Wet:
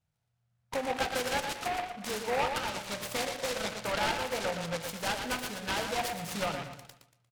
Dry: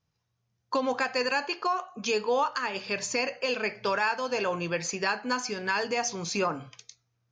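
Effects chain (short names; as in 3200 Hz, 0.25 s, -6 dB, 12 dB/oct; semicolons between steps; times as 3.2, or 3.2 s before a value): LPF 7700 Hz 12 dB/oct; comb 1.4 ms, depth 93%; on a send: analogue delay 0.117 s, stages 4096, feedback 38%, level -6 dB; on the sum: noise-modulated delay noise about 1300 Hz, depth 0.11 ms; gain -6.5 dB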